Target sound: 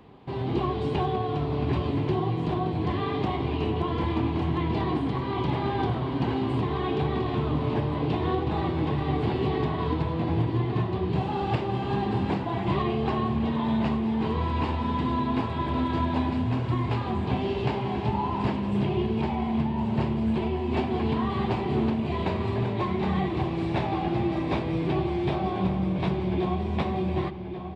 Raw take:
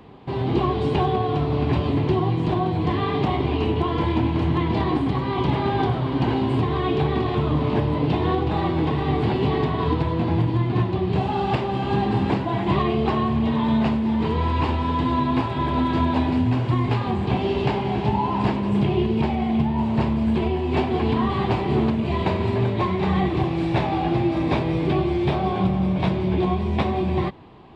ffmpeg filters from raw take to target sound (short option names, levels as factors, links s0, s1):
-filter_complex "[0:a]asplit=2[s0][s1];[s1]adelay=1133,lowpass=f=4100:p=1,volume=0.316,asplit=2[s2][s3];[s3]adelay=1133,lowpass=f=4100:p=1,volume=0.52,asplit=2[s4][s5];[s5]adelay=1133,lowpass=f=4100:p=1,volume=0.52,asplit=2[s6][s7];[s7]adelay=1133,lowpass=f=4100:p=1,volume=0.52,asplit=2[s8][s9];[s9]adelay=1133,lowpass=f=4100:p=1,volume=0.52,asplit=2[s10][s11];[s11]adelay=1133,lowpass=f=4100:p=1,volume=0.52[s12];[s0][s2][s4][s6][s8][s10][s12]amix=inputs=7:normalize=0,volume=0.531"